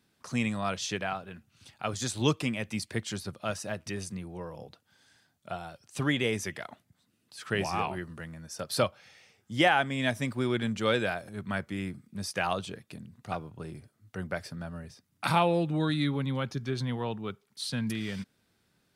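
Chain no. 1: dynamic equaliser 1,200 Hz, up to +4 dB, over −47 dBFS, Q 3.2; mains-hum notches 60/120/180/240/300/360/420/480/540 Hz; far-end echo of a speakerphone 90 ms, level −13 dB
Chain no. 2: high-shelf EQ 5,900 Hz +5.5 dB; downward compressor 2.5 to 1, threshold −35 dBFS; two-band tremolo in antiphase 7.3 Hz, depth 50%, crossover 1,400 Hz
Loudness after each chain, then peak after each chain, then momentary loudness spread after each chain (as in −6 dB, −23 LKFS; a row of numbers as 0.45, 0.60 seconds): −31.5, −40.0 LKFS; −9.5, −20.5 dBFS; 17, 11 LU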